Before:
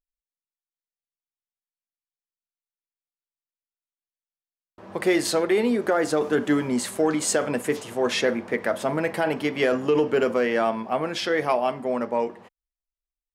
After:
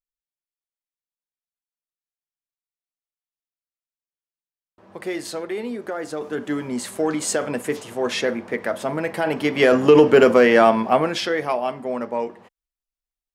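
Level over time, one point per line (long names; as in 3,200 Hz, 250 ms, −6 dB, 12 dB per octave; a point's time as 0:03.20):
0:06.07 −7 dB
0:07.08 0 dB
0:09.12 0 dB
0:09.88 +9 dB
0:10.89 +9 dB
0:11.40 −0.5 dB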